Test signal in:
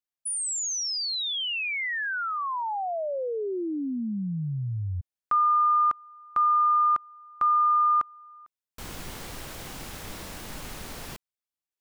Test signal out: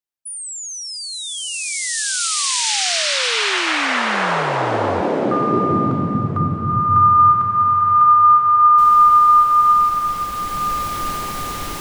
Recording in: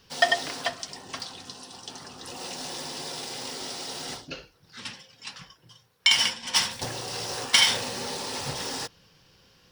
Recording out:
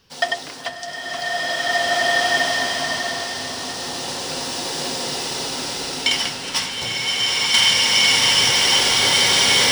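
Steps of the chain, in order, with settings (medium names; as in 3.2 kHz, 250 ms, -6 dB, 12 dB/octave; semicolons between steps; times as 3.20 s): swelling reverb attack 2090 ms, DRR -10.5 dB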